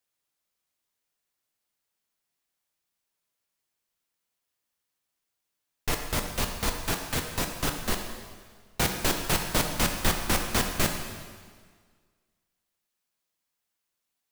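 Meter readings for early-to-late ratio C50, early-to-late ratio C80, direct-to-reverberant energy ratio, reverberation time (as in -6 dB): 5.5 dB, 6.5 dB, 3.5 dB, 1.7 s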